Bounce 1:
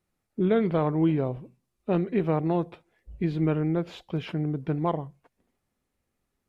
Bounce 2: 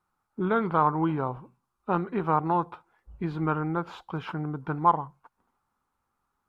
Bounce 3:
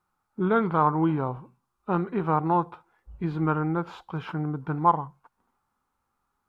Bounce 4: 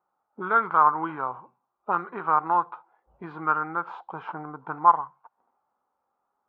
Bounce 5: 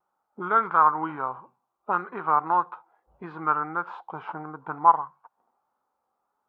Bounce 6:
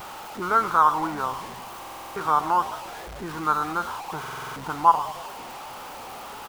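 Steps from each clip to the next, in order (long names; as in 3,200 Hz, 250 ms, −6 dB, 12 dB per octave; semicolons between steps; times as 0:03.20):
flat-topped bell 1,100 Hz +15.5 dB 1.1 octaves; level −4 dB
harmonic and percussive parts rebalanced percussive −5 dB; level +3 dB
envelope filter 640–1,300 Hz, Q 2.1, up, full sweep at −22.5 dBFS; level +7.5 dB
pitch vibrato 1.6 Hz 46 cents
converter with a step at zero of −32.5 dBFS; echo with shifted repeats 102 ms, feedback 50%, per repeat −110 Hz, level −15.5 dB; buffer that repeats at 0:01.79/0:04.19, samples 2,048, times 7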